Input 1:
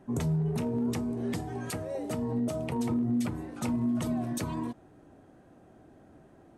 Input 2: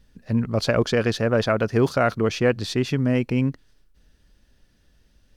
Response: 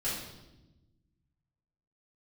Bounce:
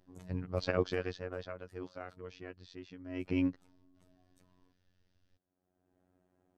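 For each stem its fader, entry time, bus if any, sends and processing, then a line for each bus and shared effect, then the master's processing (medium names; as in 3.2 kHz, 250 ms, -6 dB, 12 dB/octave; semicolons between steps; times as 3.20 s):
-9.0 dB, 0.00 s, muted 2.47–3.12 s, no send, auto duck -17 dB, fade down 1.20 s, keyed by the second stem
0.84 s -7 dB -> 1.61 s -16.5 dB -> 3.04 s -16.5 dB -> 3.29 s -4.5 dB, 0.00 s, no send, low-pass 5.9 kHz 24 dB/octave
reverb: none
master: robot voice 91.1 Hz; upward expansion 1.5:1, over -40 dBFS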